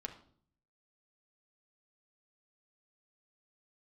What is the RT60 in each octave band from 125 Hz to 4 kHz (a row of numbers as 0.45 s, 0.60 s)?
0.95 s, 0.75 s, 0.60 s, 0.50 s, 0.40 s, 0.45 s